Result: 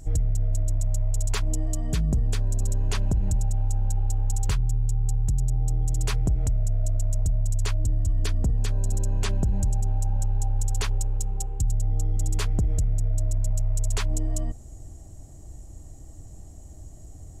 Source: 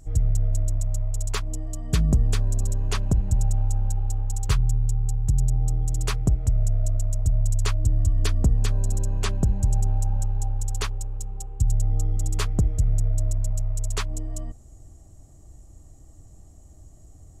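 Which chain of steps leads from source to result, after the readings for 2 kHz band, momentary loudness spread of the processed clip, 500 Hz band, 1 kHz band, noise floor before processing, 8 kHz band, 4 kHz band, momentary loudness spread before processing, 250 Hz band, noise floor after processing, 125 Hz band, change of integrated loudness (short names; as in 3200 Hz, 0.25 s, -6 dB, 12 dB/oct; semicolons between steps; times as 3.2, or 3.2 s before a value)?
-1.5 dB, 20 LU, -1.0 dB, -2.0 dB, -48 dBFS, 0.0 dB, -2.0 dB, 7 LU, -2.0 dB, -43 dBFS, -1.5 dB, -1.5 dB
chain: bell 1200 Hz -5.5 dB 0.25 oct; limiter -21.5 dBFS, peak gain reduction 11 dB; gain +5 dB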